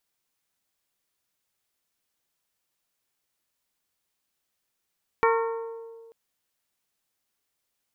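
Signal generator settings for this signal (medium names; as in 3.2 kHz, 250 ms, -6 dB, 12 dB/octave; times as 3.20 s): glass hit bell, lowest mode 457 Hz, modes 6, decay 1.88 s, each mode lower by 2 dB, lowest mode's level -19.5 dB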